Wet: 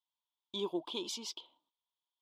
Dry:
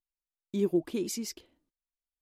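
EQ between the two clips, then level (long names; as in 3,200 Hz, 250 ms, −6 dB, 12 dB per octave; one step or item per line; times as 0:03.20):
pair of resonant band-passes 1,800 Hz, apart 1.8 octaves
+14.0 dB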